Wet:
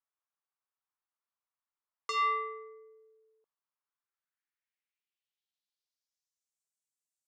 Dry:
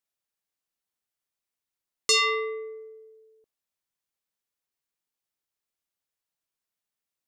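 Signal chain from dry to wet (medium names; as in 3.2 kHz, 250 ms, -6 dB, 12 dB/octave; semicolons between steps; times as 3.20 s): Chebyshev shaper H 2 -39 dB, 5 -24 dB, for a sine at -15 dBFS; band-pass sweep 1.1 kHz -> 7.6 kHz, 3.82–6.61 s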